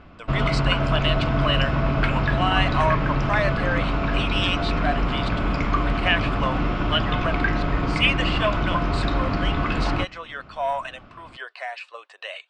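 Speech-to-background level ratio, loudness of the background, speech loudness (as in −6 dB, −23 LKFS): −3.5 dB, −24.0 LKFS, −27.5 LKFS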